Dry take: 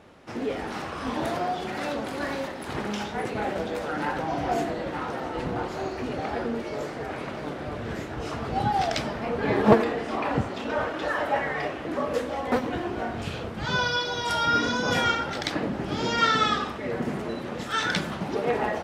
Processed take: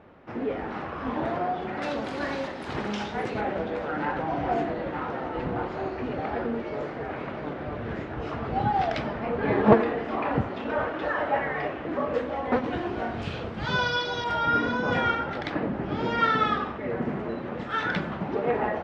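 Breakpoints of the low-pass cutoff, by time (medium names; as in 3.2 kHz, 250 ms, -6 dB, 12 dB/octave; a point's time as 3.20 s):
2.1 kHz
from 1.82 s 5.3 kHz
from 3.41 s 2.6 kHz
from 12.64 s 4.3 kHz
from 14.24 s 2.2 kHz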